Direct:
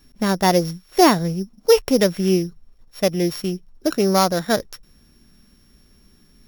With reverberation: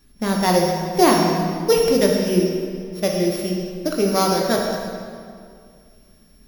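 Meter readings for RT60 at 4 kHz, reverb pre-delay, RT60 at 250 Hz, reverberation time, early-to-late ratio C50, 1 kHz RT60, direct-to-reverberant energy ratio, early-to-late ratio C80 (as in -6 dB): 1.6 s, 15 ms, 2.4 s, 2.2 s, 1.5 dB, 2.2 s, -0.5 dB, 3.0 dB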